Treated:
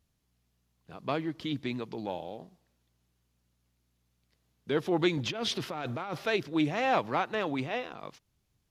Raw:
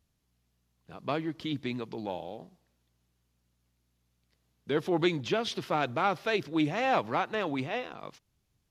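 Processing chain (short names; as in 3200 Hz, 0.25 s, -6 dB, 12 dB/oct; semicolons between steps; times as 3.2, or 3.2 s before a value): 5.17–6.26 negative-ratio compressor -34 dBFS, ratio -1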